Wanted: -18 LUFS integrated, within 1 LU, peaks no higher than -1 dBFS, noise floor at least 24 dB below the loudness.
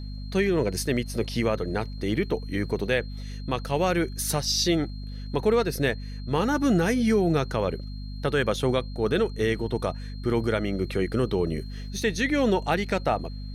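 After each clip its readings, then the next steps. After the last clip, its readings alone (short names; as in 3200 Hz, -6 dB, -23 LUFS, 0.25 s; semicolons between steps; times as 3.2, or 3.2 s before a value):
hum 50 Hz; harmonics up to 250 Hz; hum level -33 dBFS; steady tone 4200 Hz; tone level -49 dBFS; loudness -26.0 LUFS; peak -11.5 dBFS; loudness target -18.0 LUFS
-> notches 50/100/150/200/250 Hz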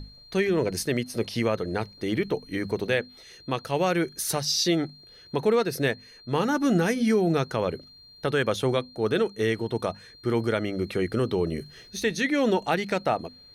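hum none; steady tone 4200 Hz; tone level -49 dBFS
-> notch 4200 Hz, Q 30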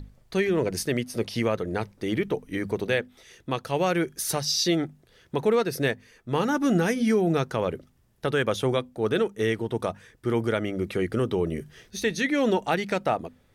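steady tone none; loudness -26.5 LUFS; peak -12.0 dBFS; loudness target -18.0 LUFS
-> gain +8.5 dB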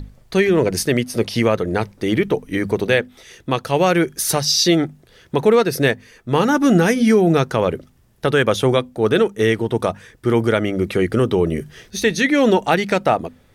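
loudness -18.0 LUFS; peak -3.5 dBFS; noise floor -53 dBFS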